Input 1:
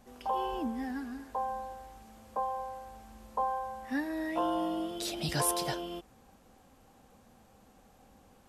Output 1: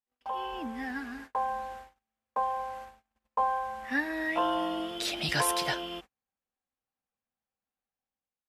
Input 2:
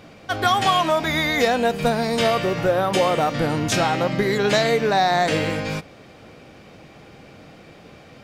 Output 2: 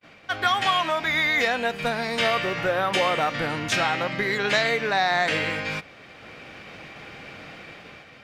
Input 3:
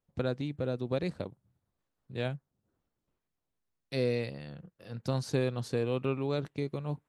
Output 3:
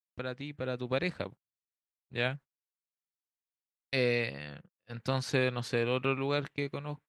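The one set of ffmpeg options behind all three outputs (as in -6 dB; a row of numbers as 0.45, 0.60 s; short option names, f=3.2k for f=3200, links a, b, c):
-af "agate=range=-38dB:threshold=-46dB:ratio=16:detection=peak,equalizer=f=2.1k:w=0.57:g=12,dynaudnorm=f=260:g=5:m=7.5dB,volume=-9dB"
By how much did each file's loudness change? +3.0, -3.0, +1.0 LU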